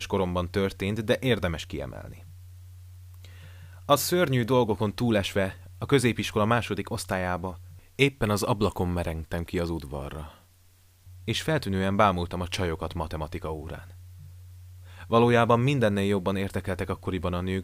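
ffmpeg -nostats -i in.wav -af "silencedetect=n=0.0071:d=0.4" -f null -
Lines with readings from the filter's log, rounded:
silence_start: 10.36
silence_end: 11.07 | silence_duration: 0.71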